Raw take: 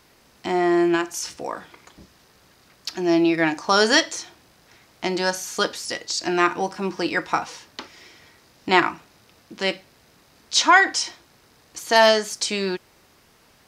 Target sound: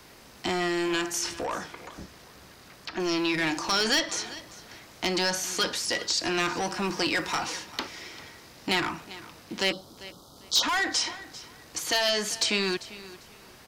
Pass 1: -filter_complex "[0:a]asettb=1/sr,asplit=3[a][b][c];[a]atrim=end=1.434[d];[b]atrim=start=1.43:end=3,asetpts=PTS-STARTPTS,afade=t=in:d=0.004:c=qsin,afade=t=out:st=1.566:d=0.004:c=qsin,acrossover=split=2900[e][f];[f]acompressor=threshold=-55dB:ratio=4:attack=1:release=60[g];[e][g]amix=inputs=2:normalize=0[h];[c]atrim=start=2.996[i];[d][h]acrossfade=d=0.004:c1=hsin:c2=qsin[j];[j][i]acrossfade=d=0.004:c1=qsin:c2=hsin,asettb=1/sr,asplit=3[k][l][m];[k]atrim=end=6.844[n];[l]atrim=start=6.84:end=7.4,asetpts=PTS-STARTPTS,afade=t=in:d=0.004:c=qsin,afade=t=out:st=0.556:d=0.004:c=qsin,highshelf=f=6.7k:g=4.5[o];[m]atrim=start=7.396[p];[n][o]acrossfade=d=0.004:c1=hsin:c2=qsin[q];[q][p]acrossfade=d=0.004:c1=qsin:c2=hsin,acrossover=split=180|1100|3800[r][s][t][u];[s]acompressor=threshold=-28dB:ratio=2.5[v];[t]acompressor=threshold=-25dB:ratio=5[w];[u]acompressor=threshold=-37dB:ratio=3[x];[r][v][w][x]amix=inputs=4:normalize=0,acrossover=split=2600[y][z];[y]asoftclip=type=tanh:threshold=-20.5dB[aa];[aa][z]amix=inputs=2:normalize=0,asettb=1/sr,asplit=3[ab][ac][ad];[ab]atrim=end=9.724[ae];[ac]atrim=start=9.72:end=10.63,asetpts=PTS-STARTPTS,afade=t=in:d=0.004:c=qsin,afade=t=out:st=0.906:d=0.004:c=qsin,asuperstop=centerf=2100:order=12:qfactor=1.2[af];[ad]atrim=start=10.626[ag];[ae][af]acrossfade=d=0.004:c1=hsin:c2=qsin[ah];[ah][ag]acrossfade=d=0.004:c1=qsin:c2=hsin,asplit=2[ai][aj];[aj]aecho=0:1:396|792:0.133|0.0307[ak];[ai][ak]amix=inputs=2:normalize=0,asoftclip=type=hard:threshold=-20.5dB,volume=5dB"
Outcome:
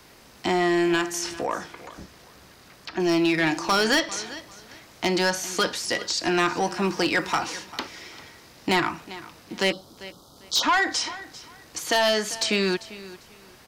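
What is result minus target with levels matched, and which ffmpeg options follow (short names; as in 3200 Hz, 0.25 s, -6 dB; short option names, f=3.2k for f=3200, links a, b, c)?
soft clip: distortion -8 dB
-filter_complex "[0:a]asettb=1/sr,asplit=3[a][b][c];[a]atrim=end=1.434[d];[b]atrim=start=1.43:end=3,asetpts=PTS-STARTPTS,afade=t=in:d=0.004:c=qsin,afade=t=out:st=1.566:d=0.004:c=qsin,acrossover=split=2900[e][f];[f]acompressor=threshold=-55dB:ratio=4:attack=1:release=60[g];[e][g]amix=inputs=2:normalize=0[h];[c]atrim=start=2.996[i];[d][h]acrossfade=d=0.004:c1=hsin:c2=qsin[j];[j][i]acrossfade=d=0.004:c1=qsin:c2=hsin,asettb=1/sr,asplit=3[k][l][m];[k]atrim=end=6.844[n];[l]atrim=start=6.84:end=7.4,asetpts=PTS-STARTPTS,afade=t=in:d=0.004:c=qsin,afade=t=out:st=0.556:d=0.004:c=qsin,highshelf=f=6.7k:g=4.5[o];[m]atrim=start=7.396[p];[n][o]acrossfade=d=0.004:c1=hsin:c2=qsin[q];[q][p]acrossfade=d=0.004:c1=qsin:c2=hsin,acrossover=split=180|1100|3800[r][s][t][u];[s]acompressor=threshold=-28dB:ratio=2.5[v];[t]acompressor=threshold=-25dB:ratio=5[w];[u]acompressor=threshold=-37dB:ratio=3[x];[r][v][w][x]amix=inputs=4:normalize=0,acrossover=split=2600[y][z];[y]asoftclip=type=tanh:threshold=-31dB[aa];[aa][z]amix=inputs=2:normalize=0,asettb=1/sr,asplit=3[ab][ac][ad];[ab]atrim=end=9.724[ae];[ac]atrim=start=9.72:end=10.63,asetpts=PTS-STARTPTS,afade=t=in:d=0.004:c=qsin,afade=t=out:st=0.906:d=0.004:c=qsin,asuperstop=centerf=2100:order=12:qfactor=1.2[af];[ad]atrim=start=10.626[ag];[ae][af]acrossfade=d=0.004:c1=hsin:c2=qsin[ah];[ah][ag]acrossfade=d=0.004:c1=qsin:c2=hsin,asplit=2[ai][aj];[aj]aecho=0:1:396|792:0.133|0.0307[ak];[ai][ak]amix=inputs=2:normalize=0,asoftclip=type=hard:threshold=-20.5dB,volume=5dB"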